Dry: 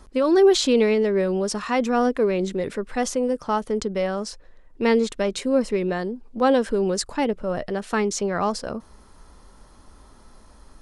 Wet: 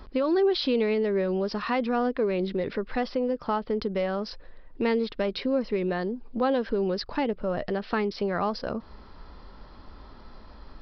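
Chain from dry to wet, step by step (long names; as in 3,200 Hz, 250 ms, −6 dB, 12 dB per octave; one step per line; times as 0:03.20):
downward compressor 2 to 1, threshold −32 dBFS, peak gain reduction 11 dB
downsampling to 11,025 Hz
level +3 dB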